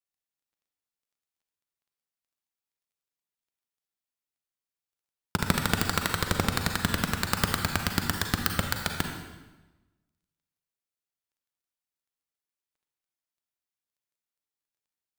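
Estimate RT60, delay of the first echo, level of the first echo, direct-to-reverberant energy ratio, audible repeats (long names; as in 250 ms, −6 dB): 1.1 s, no echo audible, no echo audible, 3.5 dB, no echo audible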